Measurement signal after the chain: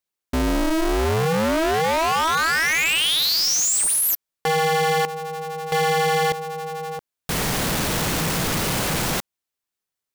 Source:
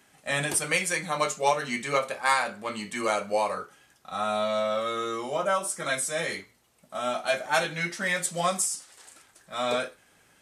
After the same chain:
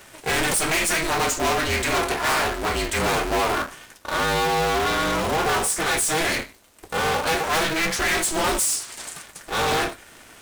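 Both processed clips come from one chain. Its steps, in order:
soft clipping −27 dBFS
leveller curve on the samples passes 2
ring modulator with a square carrier 160 Hz
level +8 dB

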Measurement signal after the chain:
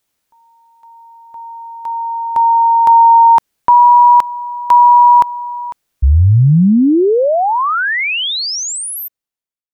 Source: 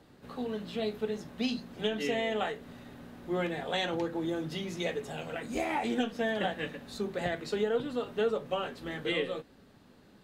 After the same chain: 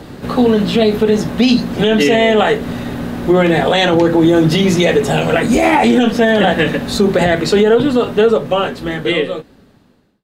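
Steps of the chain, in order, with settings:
fade-out on the ending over 3.20 s
low-shelf EQ 470 Hz +3.5 dB
boost into a limiter +25.5 dB
level −2 dB

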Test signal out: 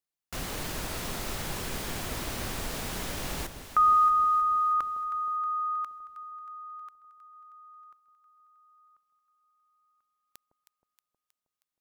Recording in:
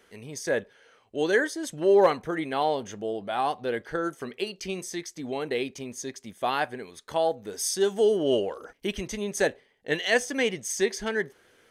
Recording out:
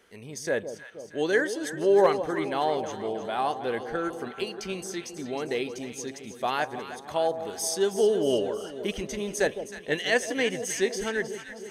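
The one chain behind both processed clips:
delay that swaps between a low-pass and a high-pass 158 ms, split 890 Hz, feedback 77%, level −9.5 dB
level −1 dB

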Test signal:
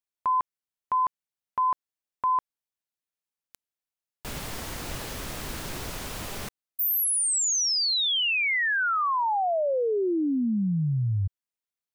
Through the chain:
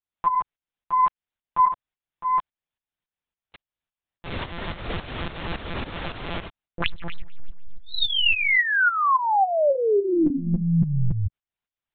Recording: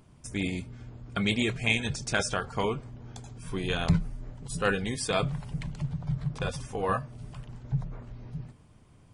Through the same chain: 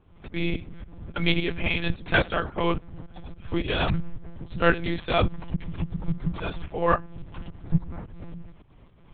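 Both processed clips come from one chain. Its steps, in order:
stylus tracing distortion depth 0.032 ms
shaped tremolo saw up 3.6 Hz, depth 80%
one-pitch LPC vocoder at 8 kHz 170 Hz
level +8.5 dB

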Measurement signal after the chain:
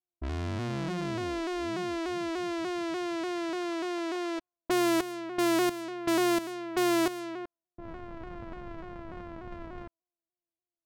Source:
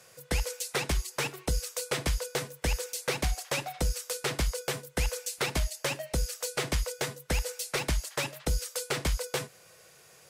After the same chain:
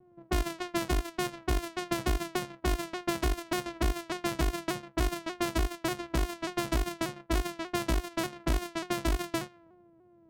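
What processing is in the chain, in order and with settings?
samples sorted by size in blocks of 128 samples
low-pass that shuts in the quiet parts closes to 430 Hz, open at −27.5 dBFS
pitch modulation by a square or saw wave saw down 3.4 Hz, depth 100 cents

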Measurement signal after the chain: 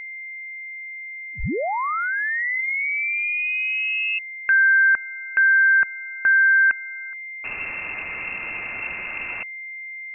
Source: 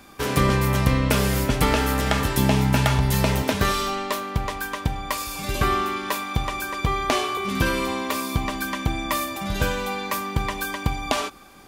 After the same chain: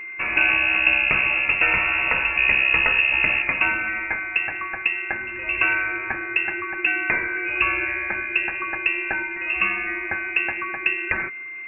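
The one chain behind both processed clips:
steady tone 600 Hz −32 dBFS
voice inversion scrambler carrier 2,700 Hz

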